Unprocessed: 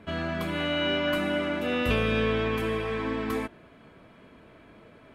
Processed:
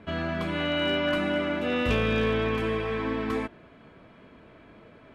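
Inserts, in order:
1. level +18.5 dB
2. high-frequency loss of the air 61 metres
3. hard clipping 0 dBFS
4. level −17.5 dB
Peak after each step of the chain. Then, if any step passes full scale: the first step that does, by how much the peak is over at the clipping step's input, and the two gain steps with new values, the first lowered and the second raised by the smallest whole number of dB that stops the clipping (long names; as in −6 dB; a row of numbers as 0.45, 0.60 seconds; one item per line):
+5.5, +5.0, 0.0, −17.5 dBFS
step 1, 5.0 dB
step 1 +13.5 dB, step 4 −12.5 dB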